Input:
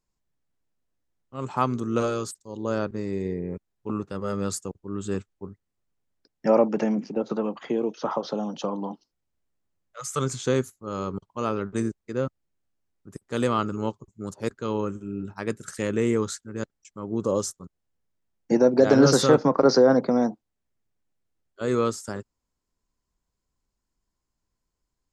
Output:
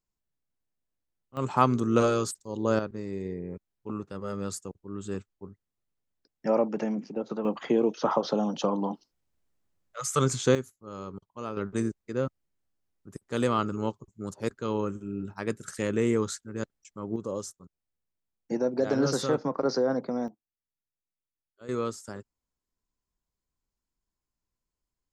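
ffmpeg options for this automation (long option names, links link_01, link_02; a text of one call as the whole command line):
ffmpeg -i in.wav -af "asetnsamples=nb_out_samples=441:pad=0,asendcmd='1.37 volume volume 2dB;2.79 volume volume -5.5dB;7.45 volume volume 2dB;10.55 volume volume -9dB;11.57 volume volume -2dB;17.16 volume volume -9dB;20.28 volume volume -18dB;21.69 volume volume -7dB',volume=-7dB" out.wav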